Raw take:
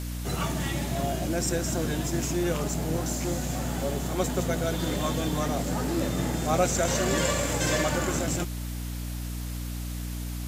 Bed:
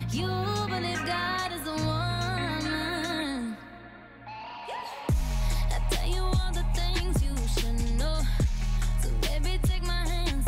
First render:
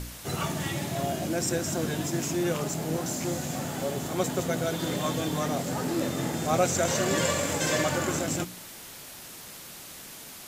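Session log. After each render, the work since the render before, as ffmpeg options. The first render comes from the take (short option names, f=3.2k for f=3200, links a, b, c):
-af "bandreject=f=60:t=h:w=4,bandreject=f=120:t=h:w=4,bandreject=f=180:t=h:w=4,bandreject=f=240:t=h:w=4,bandreject=f=300:t=h:w=4"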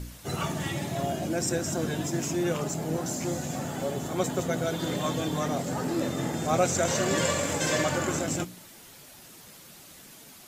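-af "afftdn=nr=7:nf=-44"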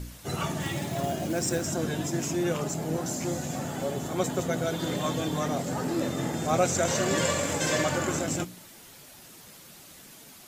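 -filter_complex "[0:a]asettb=1/sr,asplit=3[a][b][c];[a]atrim=end=0.624[d];[b]atrim=start=0.62:end=1.67,asetpts=PTS-STARTPTS,afade=t=in:d=0.004:c=qsin,afade=t=out:st=1.046:d=0.004:c=qsin,acrusher=bits=4:mode=log:mix=0:aa=0.000001[e];[c]atrim=start=1.666[f];[d][e]acrossfade=d=0.004:c1=hsin:c2=qsin[g];[g][f]acrossfade=d=0.004:c1=qsin:c2=hsin"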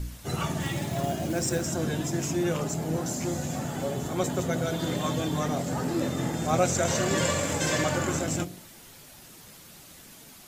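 -af "lowshelf=f=110:g=7.5,bandreject=f=47.29:t=h:w=4,bandreject=f=94.58:t=h:w=4,bandreject=f=141.87:t=h:w=4,bandreject=f=189.16:t=h:w=4,bandreject=f=236.45:t=h:w=4,bandreject=f=283.74:t=h:w=4,bandreject=f=331.03:t=h:w=4,bandreject=f=378.32:t=h:w=4,bandreject=f=425.61:t=h:w=4,bandreject=f=472.9:t=h:w=4,bandreject=f=520.19:t=h:w=4,bandreject=f=567.48:t=h:w=4,bandreject=f=614.77:t=h:w=4,bandreject=f=662.06:t=h:w=4,bandreject=f=709.35:t=h:w=4"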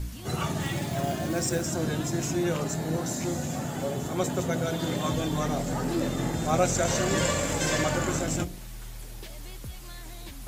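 -filter_complex "[1:a]volume=-14.5dB[a];[0:a][a]amix=inputs=2:normalize=0"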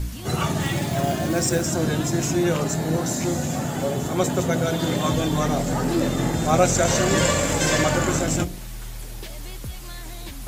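-af "volume=6dB"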